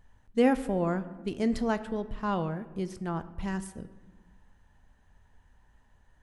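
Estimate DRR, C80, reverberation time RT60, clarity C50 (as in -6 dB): 12.0 dB, 16.5 dB, 1.3 s, 15.0 dB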